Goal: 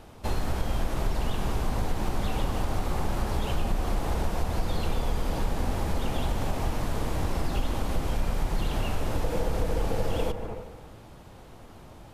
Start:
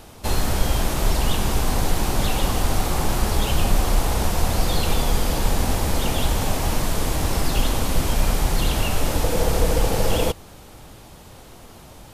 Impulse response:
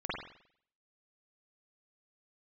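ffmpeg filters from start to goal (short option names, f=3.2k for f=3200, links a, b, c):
-filter_complex "[0:a]asplit=2[a][b];[1:a]atrim=start_sample=2205,asetrate=27342,aresample=44100,adelay=149[c];[b][c]afir=irnorm=-1:irlink=0,volume=-18dB[d];[a][d]amix=inputs=2:normalize=0,acompressor=threshold=-19dB:ratio=2.5,highshelf=f=3.6k:g=-10.5,volume=-4dB"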